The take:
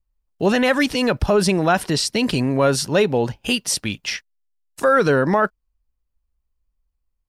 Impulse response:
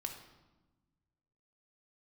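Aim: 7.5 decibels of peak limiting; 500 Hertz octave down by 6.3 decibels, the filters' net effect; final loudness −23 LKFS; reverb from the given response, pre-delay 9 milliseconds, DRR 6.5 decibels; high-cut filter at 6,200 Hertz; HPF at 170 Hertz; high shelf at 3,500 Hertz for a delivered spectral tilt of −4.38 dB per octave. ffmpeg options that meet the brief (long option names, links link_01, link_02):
-filter_complex "[0:a]highpass=170,lowpass=6200,equalizer=frequency=500:width_type=o:gain=-7.5,highshelf=frequency=3500:gain=-4.5,alimiter=limit=-14.5dB:level=0:latency=1,asplit=2[link_01][link_02];[1:a]atrim=start_sample=2205,adelay=9[link_03];[link_02][link_03]afir=irnorm=-1:irlink=0,volume=-5.5dB[link_04];[link_01][link_04]amix=inputs=2:normalize=0,volume=1.5dB"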